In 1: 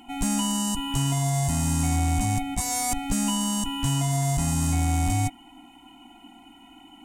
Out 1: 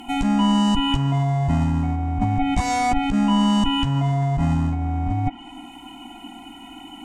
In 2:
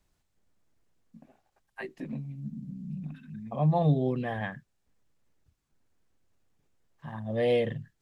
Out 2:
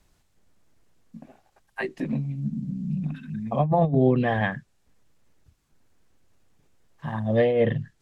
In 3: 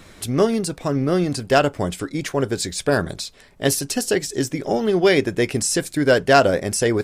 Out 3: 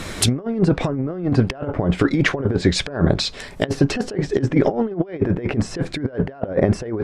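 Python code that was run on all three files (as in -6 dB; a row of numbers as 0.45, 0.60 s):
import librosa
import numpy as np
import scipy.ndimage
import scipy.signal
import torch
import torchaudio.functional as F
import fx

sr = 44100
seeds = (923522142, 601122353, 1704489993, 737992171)

y = fx.env_lowpass_down(x, sr, base_hz=1300.0, full_db=-19.5)
y = fx.over_compress(y, sr, threshold_db=-26.0, ratio=-0.5)
y = y * 10.0 ** (7.5 / 20.0)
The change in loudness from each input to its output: +4.0, +5.5, -1.0 LU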